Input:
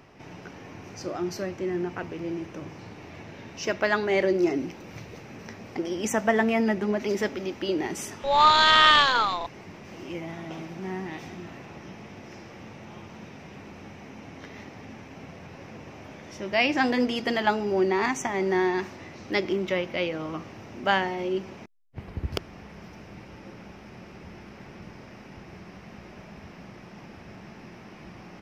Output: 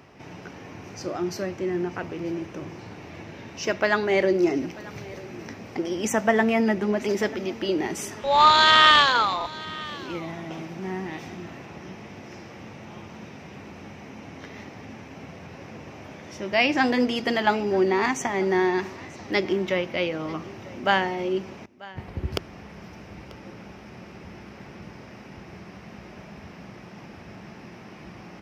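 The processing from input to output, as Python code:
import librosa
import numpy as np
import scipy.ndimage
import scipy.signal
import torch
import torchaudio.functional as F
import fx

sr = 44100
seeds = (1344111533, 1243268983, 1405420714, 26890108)

y = scipy.signal.sosfilt(scipy.signal.butter(2, 46.0, 'highpass', fs=sr, output='sos'), x)
y = y + 10.0 ** (-20.5 / 20.0) * np.pad(y, (int(940 * sr / 1000.0), 0))[:len(y)]
y = F.gain(torch.from_numpy(y), 2.0).numpy()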